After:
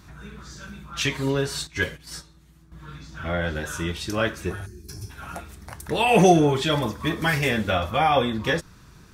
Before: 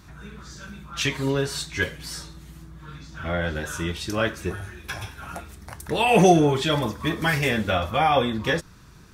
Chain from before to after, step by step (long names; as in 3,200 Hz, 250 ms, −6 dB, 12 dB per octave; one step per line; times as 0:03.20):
0:01.67–0:02.72: noise gate −34 dBFS, range −11 dB
0:04.66–0:05.10: gain on a spectral selection 450–4,100 Hz −21 dB